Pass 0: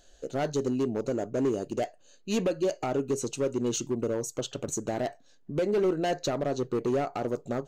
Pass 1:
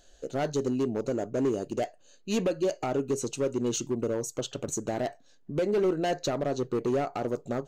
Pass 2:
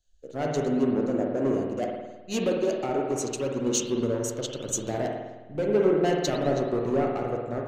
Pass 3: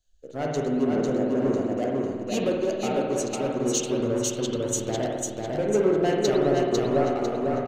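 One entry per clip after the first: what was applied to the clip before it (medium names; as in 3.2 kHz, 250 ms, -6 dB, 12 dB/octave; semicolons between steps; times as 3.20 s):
no audible change
spring tank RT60 1.9 s, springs 52 ms, chirp 70 ms, DRR -0.5 dB; three bands expanded up and down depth 70%
feedback delay 499 ms, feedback 35%, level -3 dB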